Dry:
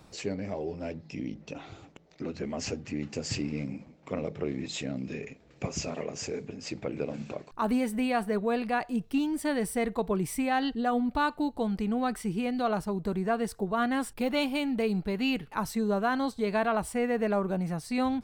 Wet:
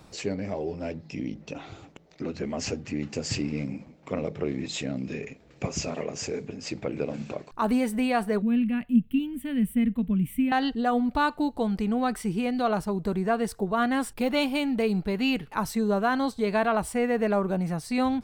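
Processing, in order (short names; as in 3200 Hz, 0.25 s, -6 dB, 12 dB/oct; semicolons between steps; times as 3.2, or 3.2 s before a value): 8.42–10.52 EQ curve 150 Hz 0 dB, 240 Hz +8 dB, 360 Hz -17 dB, 530 Hz -14 dB, 770 Hz -22 dB, 3000 Hz -2 dB, 5000 Hz -28 dB, 13000 Hz -2 dB; gain +3 dB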